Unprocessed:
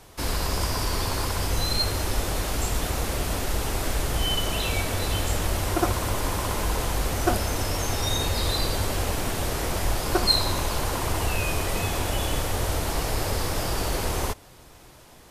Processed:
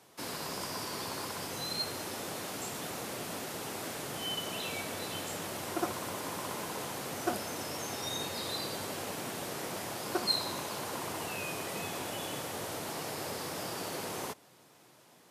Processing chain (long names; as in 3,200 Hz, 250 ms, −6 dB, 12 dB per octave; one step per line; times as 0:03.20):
high-pass filter 140 Hz 24 dB per octave
level −9 dB